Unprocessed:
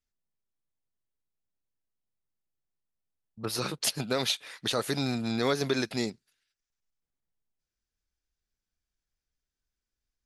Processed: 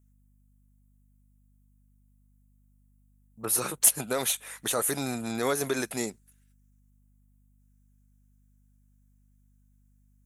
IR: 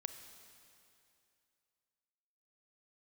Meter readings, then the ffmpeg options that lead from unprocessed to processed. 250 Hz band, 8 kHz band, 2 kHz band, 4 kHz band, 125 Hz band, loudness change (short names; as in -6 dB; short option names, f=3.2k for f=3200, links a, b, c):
-2.5 dB, +10.5 dB, 0.0 dB, -5.0 dB, -4.5 dB, +3.0 dB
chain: -filter_complex "[0:a]asplit=2[a][b];[b]highpass=f=720:p=1,volume=9dB,asoftclip=type=tanh:threshold=-11dB[c];[a][c]amix=inputs=2:normalize=0,lowpass=f=1.4k:p=1,volume=-6dB,aexciter=amount=13.6:drive=7.5:freq=7.1k,aeval=exprs='val(0)+0.000794*(sin(2*PI*50*n/s)+sin(2*PI*2*50*n/s)/2+sin(2*PI*3*50*n/s)/3+sin(2*PI*4*50*n/s)/4+sin(2*PI*5*50*n/s)/5)':c=same"